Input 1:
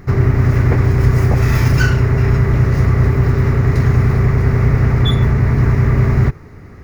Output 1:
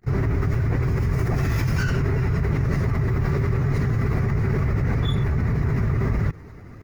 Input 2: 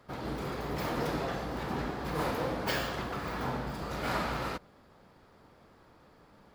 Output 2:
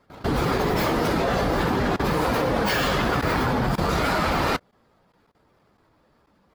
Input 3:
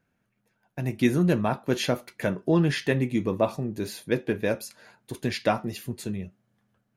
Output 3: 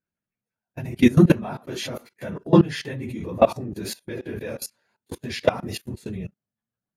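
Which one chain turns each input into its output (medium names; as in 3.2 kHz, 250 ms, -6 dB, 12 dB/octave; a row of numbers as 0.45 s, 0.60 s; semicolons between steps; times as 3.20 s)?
phase randomisation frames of 50 ms; gate -37 dBFS, range -19 dB; level held to a coarse grid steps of 20 dB; normalise loudness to -23 LUFS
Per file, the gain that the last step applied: -1.0 dB, +17.5 dB, +9.0 dB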